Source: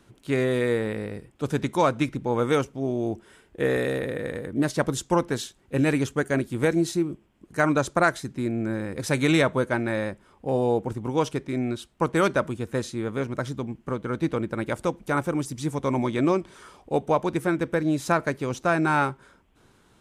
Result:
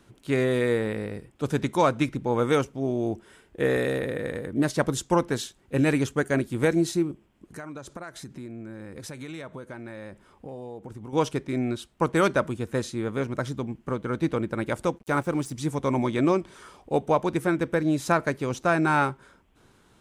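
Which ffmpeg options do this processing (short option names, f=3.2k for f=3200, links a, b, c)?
-filter_complex "[0:a]asettb=1/sr,asplit=3[a][b][c];[a]atrim=end=7.114[d];[b]atrim=start=7.11:end=11.13,asetpts=PTS-STARTPTS,afade=t=in:d=0.004:c=qsin,afade=t=out:st=4.016:d=0.004:c=qsin,acompressor=threshold=-36dB:ratio=6:attack=3.2:release=140:knee=1:detection=peak[e];[c]atrim=start=11.126[f];[d][e]acrossfade=d=0.004:c1=hsin:c2=qsin[g];[g][f]acrossfade=d=0.004:c1=qsin:c2=hsin,asplit=3[h][i][j];[h]afade=t=out:st=14.97:d=0.02[k];[i]aeval=exprs='sgn(val(0))*max(abs(val(0))-0.00376,0)':c=same,afade=t=in:st=14.97:d=0.02,afade=t=out:st=15.52:d=0.02[l];[j]afade=t=in:st=15.52:d=0.02[m];[k][l][m]amix=inputs=3:normalize=0"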